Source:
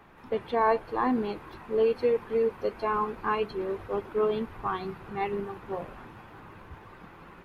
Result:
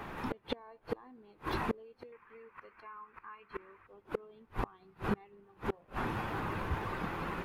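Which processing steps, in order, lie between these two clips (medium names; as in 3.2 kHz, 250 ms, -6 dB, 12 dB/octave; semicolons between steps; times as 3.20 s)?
2.12–3.87 s: high-order bell 1.6 kHz +15 dB; compression 2:1, threshold -37 dBFS, peak gain reduction 14 dB; inverted gate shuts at -32 dBFS, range -32 dB; trim +11 dB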